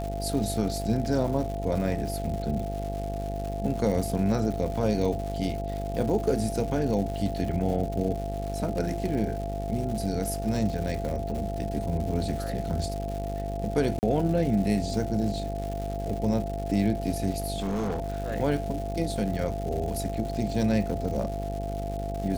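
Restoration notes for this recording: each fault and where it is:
buzz 50 Hz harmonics 17 -33 dBFS
crackle 250/s -34 dBFS
tone 680 Hz -34 dBFS
13.99–14.03 gap 39 ms
17.56–18.32 clipped -25 dBFS

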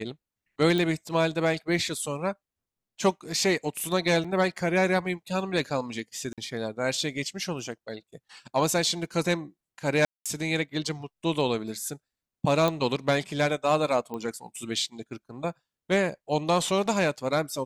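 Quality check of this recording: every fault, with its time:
0.78 pop
4.24–4.25 gap 5 ms
6.33–6.38 gap 47 ms
10.05–10.26 gap 0.206 s
12.68 pop -12 dBFS
14.14 pop -23 dBFS

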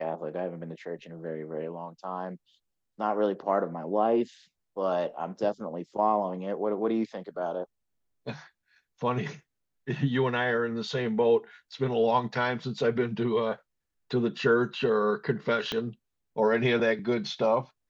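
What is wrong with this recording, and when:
15.72 pop -16 dBFS

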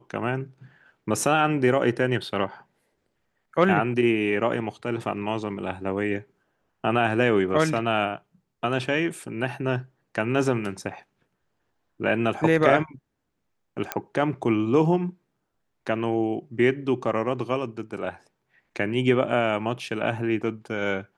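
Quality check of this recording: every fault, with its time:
13.92 pop -9 dBFS

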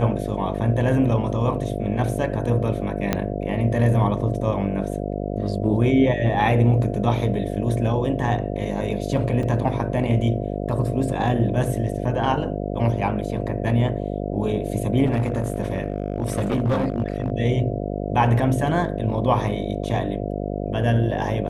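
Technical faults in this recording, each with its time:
buzz 50 Hz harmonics 14 -27 dBFS
3.13 pop -6 dBFS
9.43 gap 3.2 ms
15.05–17.32 clipped -16.5 dBFS

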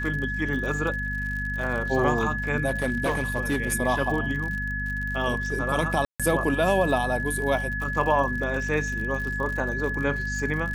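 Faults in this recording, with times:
crackle 65/s -32 dBFS
hum 50 Hz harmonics 5 -32 dBFS
tone 1700 Hz -29 dBFS
2.67–3.57 clipped -19.5 dBFS
6.05–6.2 gap 0.146 s

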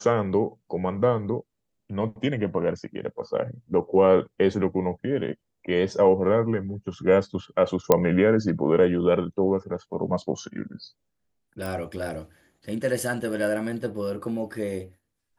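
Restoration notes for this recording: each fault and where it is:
7.92 pop -4 dBFS
11.66 pop

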